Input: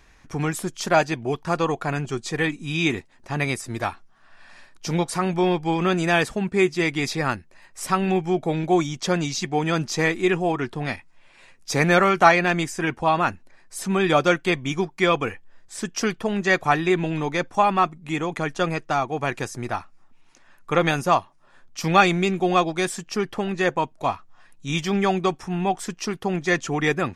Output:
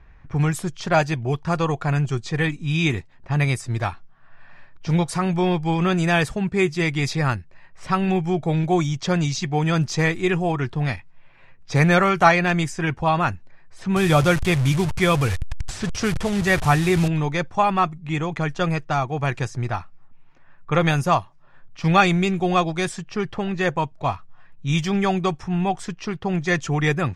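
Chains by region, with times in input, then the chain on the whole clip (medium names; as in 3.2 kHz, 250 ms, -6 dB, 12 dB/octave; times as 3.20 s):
13.96–17.08 s: one-bit delta coder 64 kbps, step -25 dBFS + peaking EQ 69 Hz +7.5 dB 2.1 oct
whole clip: resonant low shelf 180 Hz +7.5 dB, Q 1.5; level-controlled noise filter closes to 1.9 kHz, open at -17 dBFS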